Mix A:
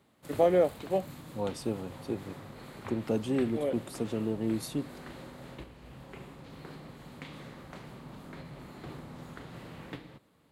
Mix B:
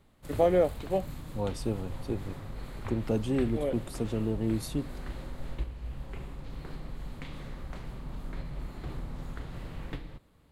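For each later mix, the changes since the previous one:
master: remove high-pass filter 150 Hz 12 dB per octave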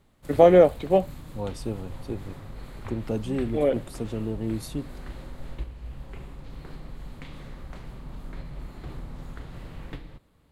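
first voice +9.0 dB

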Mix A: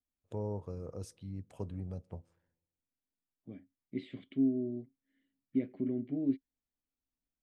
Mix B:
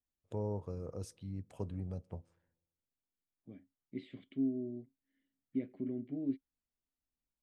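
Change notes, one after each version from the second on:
second voice −4.5 dB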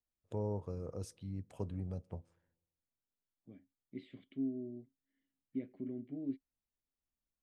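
second voice −3.5 dB

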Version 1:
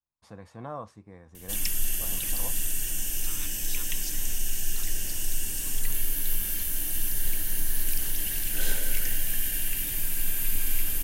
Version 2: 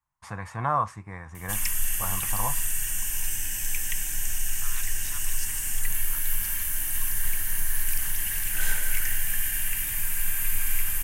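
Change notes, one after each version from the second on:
first voice +11.0 dB
second voice: entry +1.35 s
master: add octave-band graphic EQ 125/250/500/1,000/2,000/4,000/8,000 Hz +3/−8/−9/+7/+7/−7/+4 dB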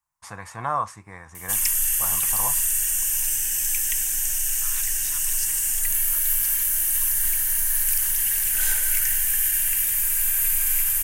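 master: add bass and treble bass −6 dB, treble +8 dB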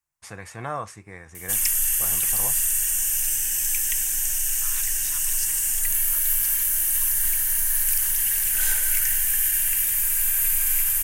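first voice: add graphic EQ with 15 bands 400 Hz +6 dB, 1,000 Hz −11 dB, 2,500 Hz +3 dB

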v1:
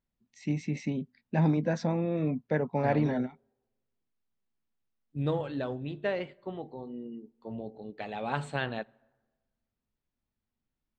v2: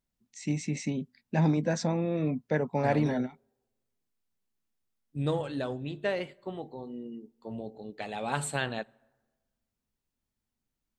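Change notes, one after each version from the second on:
master: remove high-frequency loss of the air 160 metres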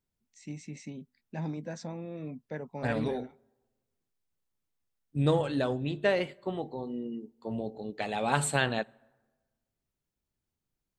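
first voice −10.5 dB
second voice +4.0 dB

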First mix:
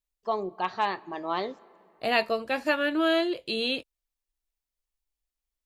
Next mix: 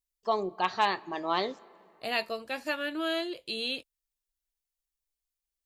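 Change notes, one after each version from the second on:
second voice −8.0 dB
master: add high-shelf EQ 3,200 Hz +9 dB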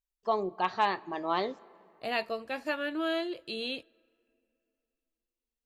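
second voice: send on
master: add high-shelf EQ 3,200 Hz −9 dB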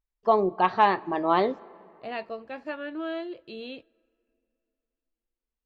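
first voice +9.5 dB
master: add head-to-tape spacing loss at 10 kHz 24 dB

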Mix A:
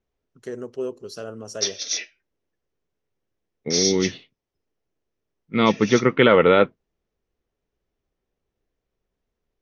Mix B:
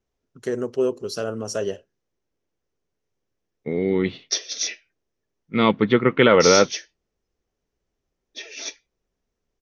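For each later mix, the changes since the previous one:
first voice +7.0 dB
background: entry +2.70 s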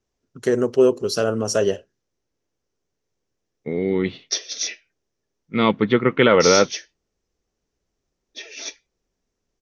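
first voice +6.5 dB

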